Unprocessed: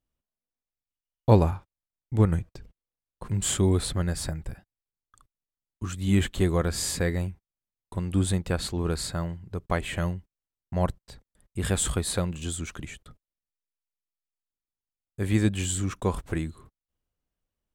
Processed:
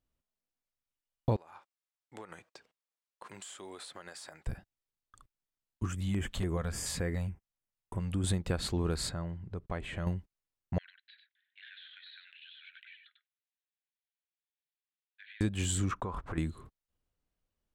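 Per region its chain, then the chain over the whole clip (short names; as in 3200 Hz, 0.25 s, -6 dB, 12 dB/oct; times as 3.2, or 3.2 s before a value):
1.36–4.47 HPF 680 Hz + bell 13000 Hz -9 dB 0.31 oct + compressor 16:1, threshold -41 dBFS
5.86–8.24 compressor 2:1, threshold -33 dBFS + LFO notch square 3.5 Hz 340–4000 Hz
9.09–10.07 compressor 2:1, threshold -39 dBFS + LPF 12000 Hz + high shelf 4000 Hz -8.5 dB
10.78–15.41 Chebyshev band-pass 1500–4100 Hz, order 5 + compressor 4:1, threshold -51 dBFS + echo 96 ms -7 dB
15.91–16.38 LPF 2000 Hz 6 dB/oct + compressor 16:1, threshold -34 dBFS + bell 1200 Hz +10.5 dB 1.1 oct
whole clip: high shelf 7700 Hz -6 dB; compressor 6:1, threshold -27 dBFS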